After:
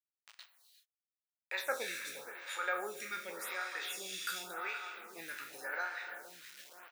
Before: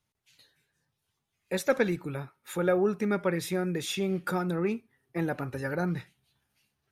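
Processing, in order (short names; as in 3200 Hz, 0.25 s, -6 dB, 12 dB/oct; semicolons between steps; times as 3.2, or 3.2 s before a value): spectral trails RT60 0.37 s; high shelf 2900 Hz +5.5 dB; on a send: feedback echo 0.471 s, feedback 34%, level -12.5 dB; on the sum: requantised 8-bit, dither none; bell 13000 Hz -5.5 dB 2 oct; in parallel at -2 dB: upward compressor, threshold -30 dBFS; on the sum: HPF 1200 Hz 12 dB/oct; non-linear reverb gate 0.41 s flat, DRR 7 dB; photocell phaser 0.89 Hz; gain -5 dB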